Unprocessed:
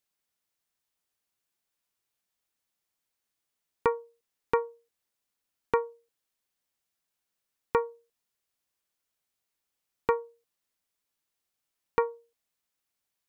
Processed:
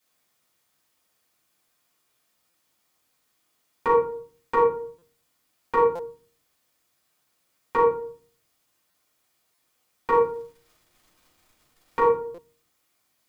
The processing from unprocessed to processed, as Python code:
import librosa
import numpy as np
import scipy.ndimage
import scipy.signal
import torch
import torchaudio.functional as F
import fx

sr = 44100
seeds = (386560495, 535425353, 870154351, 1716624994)

y = fx.highpass(x, sr, hz=160.0, slope=6)
y = fx.over_compress(y, sr, threshold_db=-26.0, ratio=-0.5)
y = fx.dmg_crackle(y, sr, seeds[0], per_s=120.0, level_db=-54.0, at=(10.12, 12.08), fade=0.02)
y = fx.room_shoebox(y, sr, seeds[1], volume_m3=400.0, walls='furnished', distance_m=8.4)
y = fx.buffer_glitch(y, sr, at_s=(2.5, 4.98, 5.95, 8.9, 9.54, 12.34), block=256, repeats=6)